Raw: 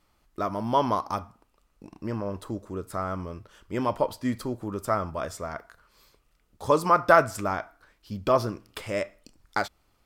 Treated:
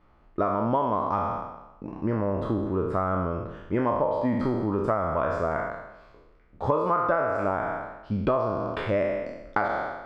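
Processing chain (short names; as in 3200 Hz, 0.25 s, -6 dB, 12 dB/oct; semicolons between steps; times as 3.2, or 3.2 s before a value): spectral trails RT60 0.98 s; LPF 1600 Hz 12 dB/oct; compressor 10:1, threshold -28 dBFS, peak gain reduction 18 dB; gain +7 dB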